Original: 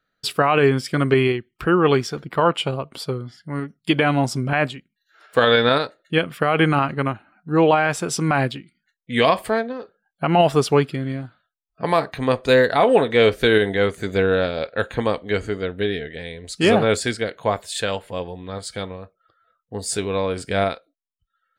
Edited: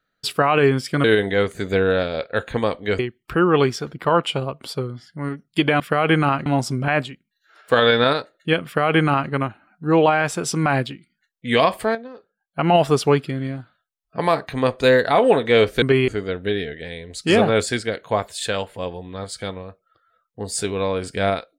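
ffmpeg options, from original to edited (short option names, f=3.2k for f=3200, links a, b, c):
-filter_complex "[0:a]asplit=9[a][b][c][d][e][f][g][h][i];[a]atrim=end=1.042[j];[b]atrim=start=13.468:end=15.422[k];[c]atrim=start=1.298:end=4.112[l];[d]atrim=start=6.298:end=6.962[m];[e]atrim=start=4.108:end=9.602[n];[f]atrim=start=9.598:end=10.242,asetpts=PTS-STARTPTS,volume=-7.5dB[o];[g]atrim=start=10.238:end=13.472[p];[h]atrim=start=1.038:end=1.302[q];[i]atrim=start=15.418[r];[j][k]acrossfade=d=0.004:c1=hsin:c2=hsin[s];[s][l]acrossfade=d=0.004:c1=hsin:c2=hsin[t];[t][m]acrossfade=d=0.004:c1=hsin:c2=hsin[u];[u][n]acrossfade=d=0.004:c1=hsin:c2=hsin[v];[v][o]acrossfade=d=0.004:c1=hsin:c2=hsin[w];[w][p]acrossfade=d=0.004:c1=hsin:c2=hsin[x];[x][q]acrossfade=d=0.004:c1=hsin:c2=hsin[y];[y][r]acrossfade=d=0.004:c1=hsin:c2=hsin"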